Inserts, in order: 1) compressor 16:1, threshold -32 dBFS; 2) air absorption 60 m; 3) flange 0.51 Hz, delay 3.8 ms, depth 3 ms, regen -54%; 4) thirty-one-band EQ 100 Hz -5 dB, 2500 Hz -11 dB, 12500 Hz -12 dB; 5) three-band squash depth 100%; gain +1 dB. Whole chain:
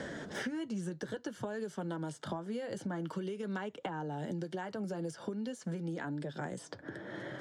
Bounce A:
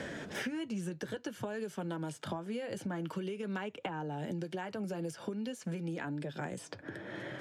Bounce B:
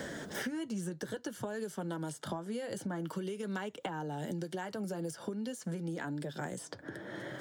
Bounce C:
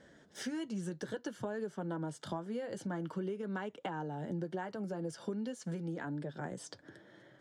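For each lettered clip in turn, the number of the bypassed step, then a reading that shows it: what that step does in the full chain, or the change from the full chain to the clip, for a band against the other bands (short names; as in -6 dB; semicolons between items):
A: 4, 4 kHz band +2.0 dB; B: 2, 8 kHz band +5.0 dB; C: 5, momentary loudness spread change +1 LU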